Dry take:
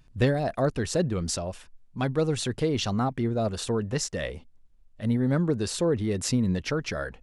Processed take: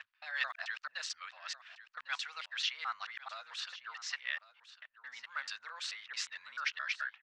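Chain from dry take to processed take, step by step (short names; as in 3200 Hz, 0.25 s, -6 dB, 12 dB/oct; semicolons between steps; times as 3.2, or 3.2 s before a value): local time reversal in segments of 0.219 s; low-pass opened by the level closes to 2200 Hz, open at -20.5 dBFS; inverse Chebyshev high-pass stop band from 400 Hz, stop band 60 dB; air absorption 180 m; on a send: echo 1.101 s -16 dB; on the sum: gain +2.5 dB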